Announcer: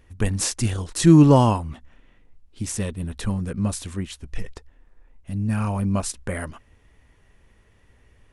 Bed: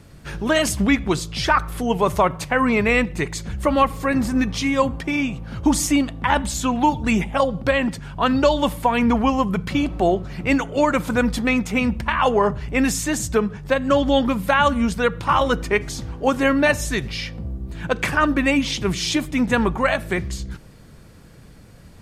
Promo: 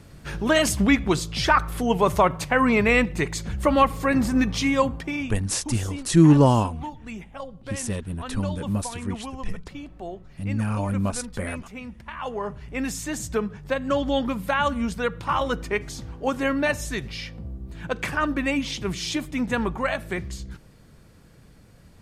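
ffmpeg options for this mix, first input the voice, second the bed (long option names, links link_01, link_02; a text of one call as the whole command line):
ffmpeg -i stem1.wav -i stem2.wav -filter_complex "[0:a]adelay=5100,volume=-2dB[link_01];[1:a]volume=10.5dB,afade=type=out:start_time=4.68:duration=0.85:silence=0.149624,afade=type=in:start_time=11.99:duration=1.4:silence=0.266073[link_02];[link_01][link_02]amix=inputs=2:normalize=0" out.wav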